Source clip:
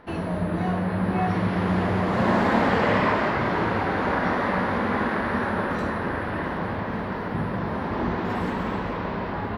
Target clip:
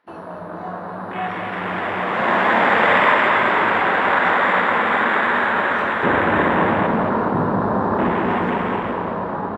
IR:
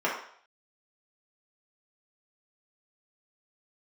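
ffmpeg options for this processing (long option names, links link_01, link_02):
-af "afwtdn=0.0224,asetnsamples=nb_out_samples=441:pad=0,asendcmd='6.03 highpass f 300',highpass=frequency=1400:poles=1,dynaudnorm=framelen=370:gausssize=11:maxgain=6.5dB,aecho=1:1:222|444|666|888|1110|1332:0.447|0.21|0.0987|0.0464|0.0218|0.0102,volume=6dB"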